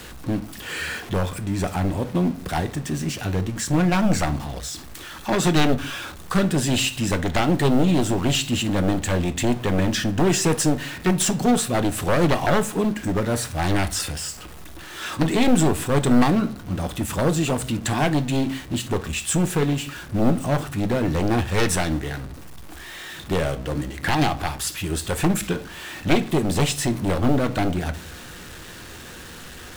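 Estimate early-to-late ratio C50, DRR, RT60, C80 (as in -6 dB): 17.0 dB, 9.5 dB, 0.50 s, 22.0 dB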